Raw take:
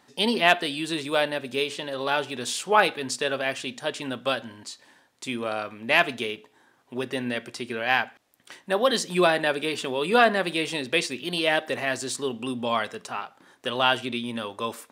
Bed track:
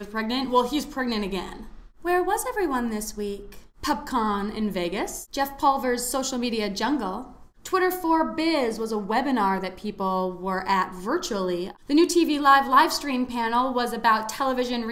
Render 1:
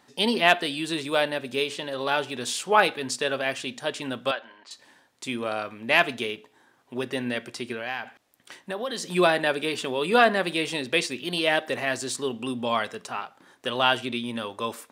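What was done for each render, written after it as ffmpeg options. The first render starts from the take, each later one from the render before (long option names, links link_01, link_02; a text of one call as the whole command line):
ffmpeg -i in.wav -filter_complex "[0:a]asettb=1/sr,asplit=3[link_01][link_02][link_03];[link_01]atrim=end=4.314[link_04];[link_02]atrim=start=4.31:end=4.71,asetpts=PTS-STARTPTS,afade=type=in:duration=0.004:curve=qsin,afade=type=out:start_time=0.396:duration=0.004:curve=qsin,highpass=600,lowpass=2900[link_05];[link_03]atrim=start=4.706[link_06];[link_04][link_05]acrossfade=duration=0.004:curve1=hsin:curve2=qsin[link_07];[link_07][link_06]acrossfade=duration=0.004:curve1=qsin:curve2=hsin,asettb=1/sr,asplit=3[link_08][link_09][link_10];[link_08]atrim=end=7.724[link_11];[link_09]atrim=start=7.72:end=9.03,asetpts=PTS-STARTPTS,afade=type=in:duration=0.004:curve=qsin,afade=type=out:start_time=1.306:duration=0.004:curve=qsin,acompressor=threshold=-29dB:ratio=3:attack=3.2:release=140:knee=1:detection=peak[link_12];[link_10]atrim=start=9.026[link_13];[link_11][link_12]acrossfade=duration=0.004:curve1=hsin:curve2=qsin[link_14];[link_14][link_13]acrossfade=duration=0.004:curve1=qsin:curve2=hsin" out.wav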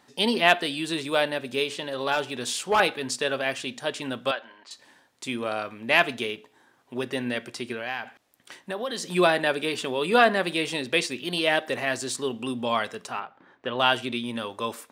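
ffmpeg -i in.wav -filter_complex "[0:a]asettb=1/sr,asplit=3[link_01][link_02][link_03];[link_01]atrim=end=2.124[link_04];[link_02]atrim=start=2.12:end=2.8,asetpts=PTS-STARTPTS,afade=type=in:duration=0.004:curve=qsin,afade=type=out:start_time=0.676:duration=0.004:curve=qsin,volume=16dB,asoftclip=hard,volume=-16dB[link_05];[link_03]atrim=start=2.796[link_06];[link_04][link_05]acrossfade=duration=0.004:curve1=hsin:curve2=qsin[link_07];[link_07][link_06]acrossfade=duration=0.004:curve1=qsin:curve2=hsin,asplit=3[link_08][link_09][link_10];[link_08]afade=type=out:start_time=13.19:duration=0.02[link_11];[link_09]lowpass=2400,afade=type=in:start_time=13.19:duration=0.02,afade=type=out:start_time=13.78:duration=0.02[link_12];[link_10]afade=type=in:start_time=13.78:duration=0.02[link_13];[link_11][link_12][link_13]amix=inputs=3:normalize=0" out.wav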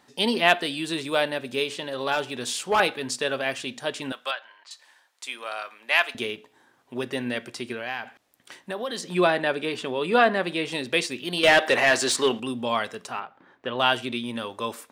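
ffmpeg -i in.wav -filter_complex "[0:a]asettb=1/sr,asplit=3[link_01][link_02][link_03];[link_01]atrim=end=4.124[link_04];[link_02]atrim=start=4.12:end=6.15,asetpts=PTS-STARTPTS,afade=type=in:duration=0.004:curve=qsin,afade=type=out:start_time=2.026:duration=0.004:curve=qsin,highpass=840[link_05];[link_03]atrim=start=6.146[link_06];[link_04][link_05]acrossfade=duration=0.004:curve1=hsin:curve2=qsin[link_07];[link_07][link_06]acrossfade=duration=0.004:curve1=qsin:curve2=hsin,asettb=1/sr,asplit=3[link_08][link_09][link_10];[link_08]atrim=end=9.014[link_11];[link_09]atrim=start=9.01:end=10.72,asetpts=PTS-STARTPTS,afade=type=in:duration=0.004:curve=qsin,afade=type=out:start_time=1.706:duration=0.004:curve=qsin,highshelf=frequency=5300:gain=-9.5[link_12];[link_10]atrim=start=10.716[link_13];[link_11][link_12]acrossfade=duration=0.004:curve1=hsin:curve2=qsin[link_14];[link_14][link_13]acrossfade=duration=0.004:curve1=qsin:curve2=hsin,asettb=1/sr,asplit=3[link_15][link_16][link_17];[link_15]atrim=end=11.434[link_18];[link_16]atrim=start=11.43:end=12.4,asetpts=PTS-STARTPTS,afade=type=in:duration=0.004:curve=qsin,afade=type=out:start_time=0.966:duration=0.004:curve=qsin,asplit=2[link_19][link_20];[link_20]highpass=frequency=720:poles=1,volume=19dB,asoftclip=type=tanh:threshold=-7.5dB[link_21];[link_19][link_21]amix=inputs=2:normalize=0,lowpass=frequency=4100:poles=1,volume=-6dB[link_22];[link_17]atrim=start=12.396[link_23];[link_18][link_22]acrossfade=duration=0.004:curve1=hsin:curve2=qsin[link_24];[link_24][link_23]acrossfade=duration=0.004:curve1=qsin:curve2=hsin" out.wav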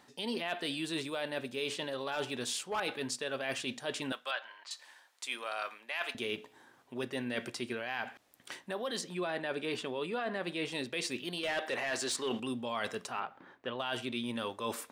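ffmpeg -i in.wav -af "alimiter=limit=-14.5dB:level=0:latency=1:release=79,areverse,acompressor=threshold=-33dB:ratio=6,areverse" out.wav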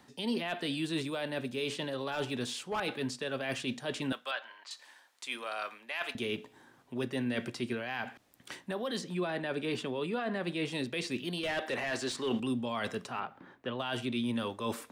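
ffmpeg -i in.wav -filter_complex "[0:a]acrossover=split=280|530|4700[link_01][link_02][link_03][link_04];[link_01]acontrast=87[link_05];[link_04]alimiter=level_in=13.5dB:limit=-24dB:level=0:latency=1:release=99,volume=-13.5dB[link_06];[link_05][link_02][link_03][link_06]amix=inputs=4:normalize=0" out.wav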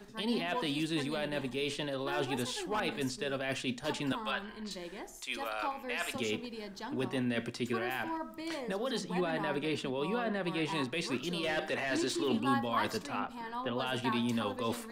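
ffmpeg -i in.wav -i bed.wav -filter_complex "[1:a]volume=-17dB[link_01];[0:a][link_01]amix=inputs=2:normalize=0" out.wav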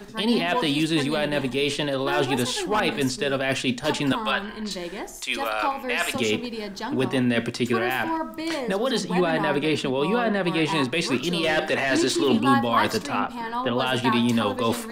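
ffmpeg -i in.wav -af "volume=11dB" out.wav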